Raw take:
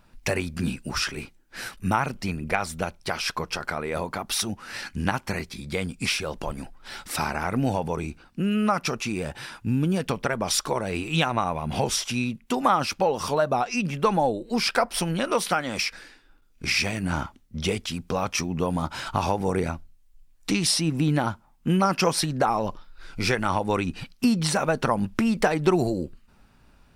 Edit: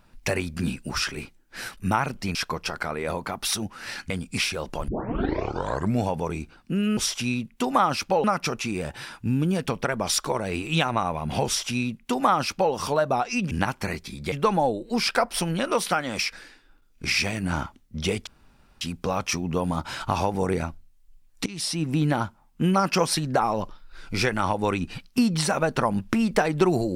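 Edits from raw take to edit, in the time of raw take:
2.35–3.22 cut
4.97–5.78 move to 13.92
6.56 tape start 1.19 s
11.87–13.14 copy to 8.65
17.87 insert room tone 0.54 s
20.52–21.17 fade in equal-power, from -21 dB

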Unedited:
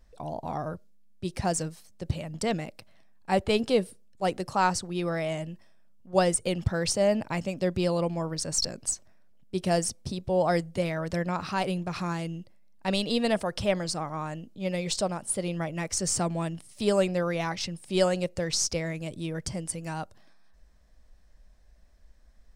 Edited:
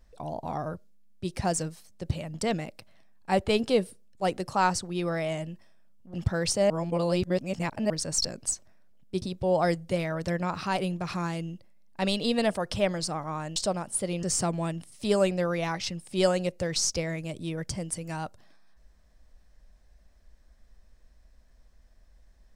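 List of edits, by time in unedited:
6.14–6.54 cut
7.1–8.3 reverse
9.62–10.08 cut
14.42–14.91 cut
15.58–16 cut

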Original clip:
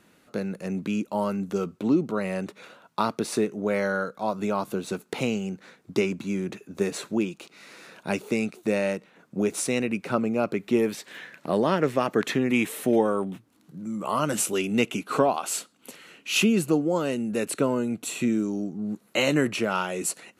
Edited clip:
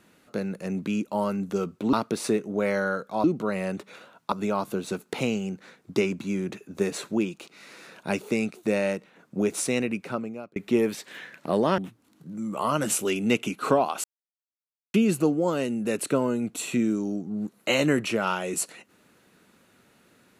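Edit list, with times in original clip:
1.93–3.01 move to 4.32
9.81–10.56 fade out
11.78–13.26 cut
15.52–16.42 mute

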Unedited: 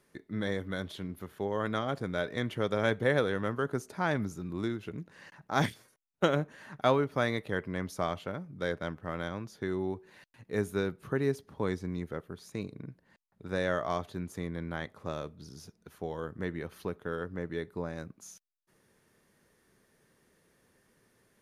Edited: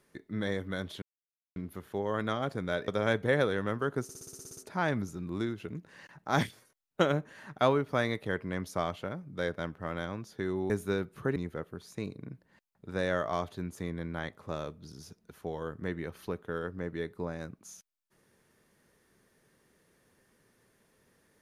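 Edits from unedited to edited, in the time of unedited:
1.02 insert silence 0.54 s
2.34–2.65 cut
3.8 stutter 0.06 s, 10 plays
9.93–10.57 cut
11.23–11.93 cut

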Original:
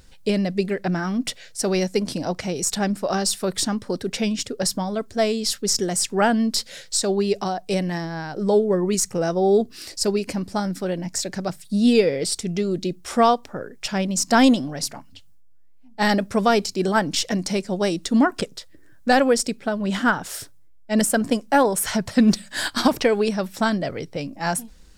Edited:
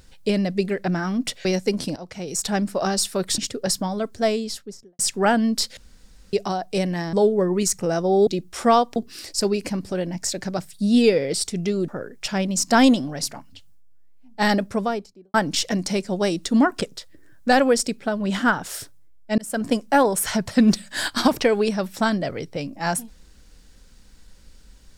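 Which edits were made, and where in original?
1.45–1.73 cut
2.24–2.82 fade in, from -16 dB
3.66–4.34 cut
5.15–5.95 studio fade out
6.73–7.29 room tone
8.09–8.45 cut
10.55–10.83 cut
12.79–13.48 move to 9.59
16.06–16.94 studio fade out
20.98–21.31 fade in

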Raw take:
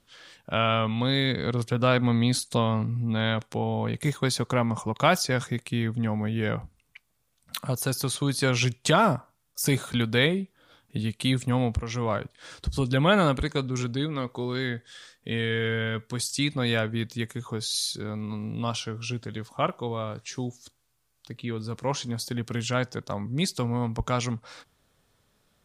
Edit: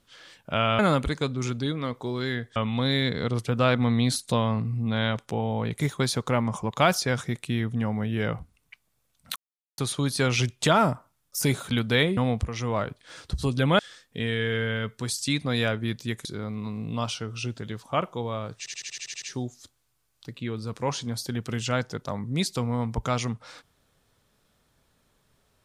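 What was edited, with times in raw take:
7.59–8.01 mute
10.4–11.51 cut
13.13–14.9 move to 0.79
17.36–17.91 cut
20.24 stutter 0.08 s, 9 plays

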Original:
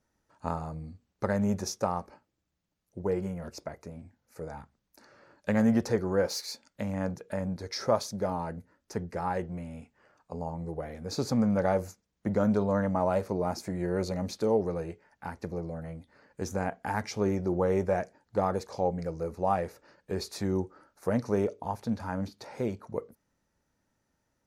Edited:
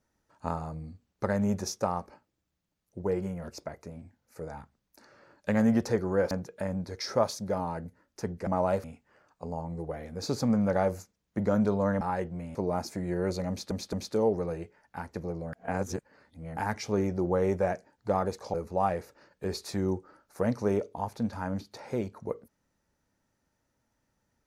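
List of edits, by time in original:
6.31–7.03 cut
9.19–9.73 swap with 12.9–13.27
14.21 stutter 0.22 s, 3 plays
15.81–16.85 reverse
18.82–19.21 cut

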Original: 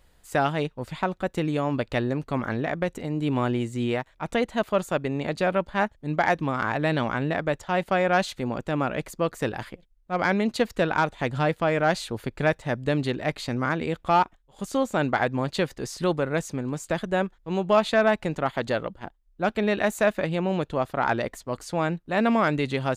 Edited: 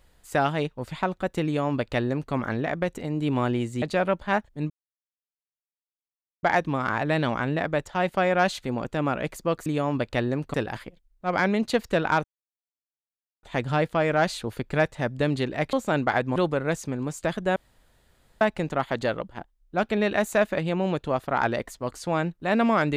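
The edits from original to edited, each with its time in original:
1.45–2.33 copy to 9.4
3.82–5.29 cut
6.17 insert silence 1.73 s
11.1 insert silence 1.19 s
13.4–14.79 cut
15.42–16.02 cut
17.22–18.07 room tone

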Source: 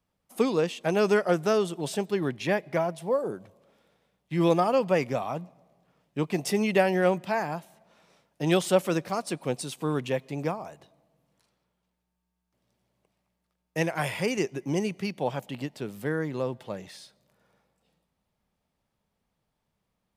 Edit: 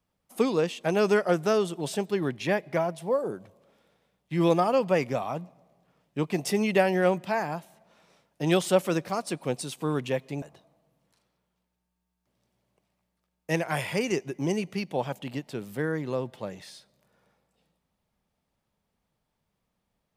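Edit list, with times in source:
10.42–10.69 cut

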